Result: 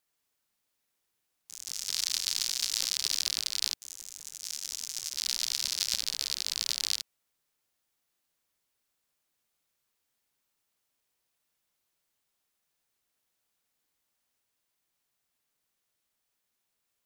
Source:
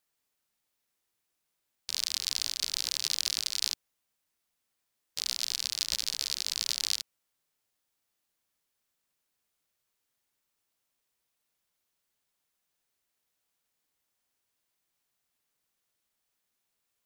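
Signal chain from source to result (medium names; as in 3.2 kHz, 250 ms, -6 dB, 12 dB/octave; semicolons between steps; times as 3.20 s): ever faster or slower copies 81 ms, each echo +3 st, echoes 2, each echo -6 dB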